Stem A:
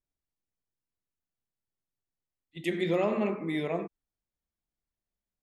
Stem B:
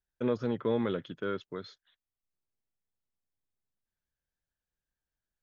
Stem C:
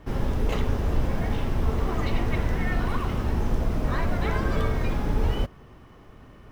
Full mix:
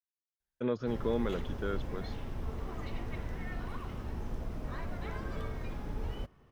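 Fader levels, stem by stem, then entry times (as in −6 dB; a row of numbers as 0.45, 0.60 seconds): muted, −2.5 dB, −13.5 dB; muted, 0.40 s, 0.80 s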